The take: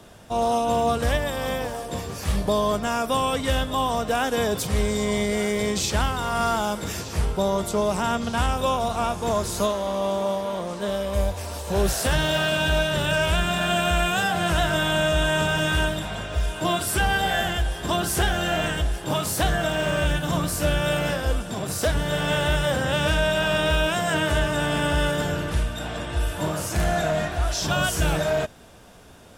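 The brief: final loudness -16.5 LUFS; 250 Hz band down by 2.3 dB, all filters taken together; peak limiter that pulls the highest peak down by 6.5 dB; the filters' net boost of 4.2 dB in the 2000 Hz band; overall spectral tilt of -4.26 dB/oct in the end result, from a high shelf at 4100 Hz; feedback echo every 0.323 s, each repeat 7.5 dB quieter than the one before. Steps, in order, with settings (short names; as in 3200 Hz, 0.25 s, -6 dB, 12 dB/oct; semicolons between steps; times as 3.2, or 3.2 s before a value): bell 250 Hz -3.5 dB; bell 2000 Hz +7.5 dB; high shelf 4100 Hz -6.5 dB; limiter -16 dBFS; feedback echo 0.323 s, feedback 42%, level -7.5 dB; gain +8.5 dB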